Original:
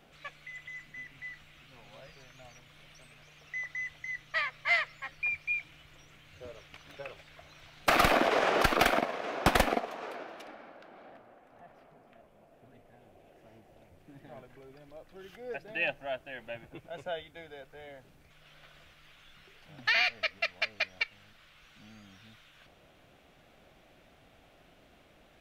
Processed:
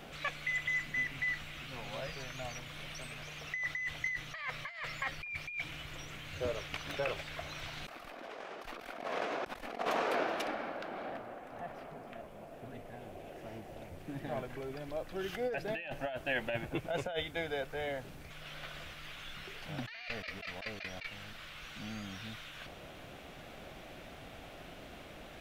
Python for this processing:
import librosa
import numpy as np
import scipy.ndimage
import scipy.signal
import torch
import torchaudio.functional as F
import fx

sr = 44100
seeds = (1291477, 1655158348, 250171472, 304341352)

y = fx.over_compress(x, sr, threshold_db=-42.0, ratio=-1.0)
y = y * 10.0 ** (3.0 / 20.0)